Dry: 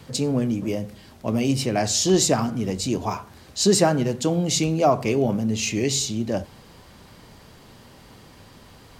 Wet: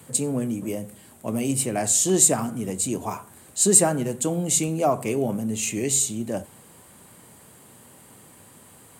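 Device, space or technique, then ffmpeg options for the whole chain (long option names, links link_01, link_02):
budget condenser microphone: -af "highpass=110,highshelf=frequency=6700:width_type=q:width=3:gain=9.5,volume=-3dB"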